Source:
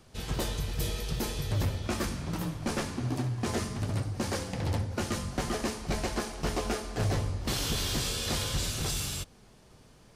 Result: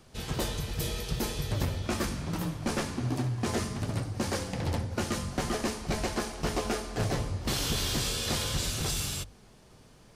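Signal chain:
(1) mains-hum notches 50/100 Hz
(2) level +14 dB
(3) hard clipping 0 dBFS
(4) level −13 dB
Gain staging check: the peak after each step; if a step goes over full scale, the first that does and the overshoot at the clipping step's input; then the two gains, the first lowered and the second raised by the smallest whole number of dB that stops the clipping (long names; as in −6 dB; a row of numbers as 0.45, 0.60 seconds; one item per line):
−17.5, −3.5, −3.5, −16.5 dBFS
no step passes full scale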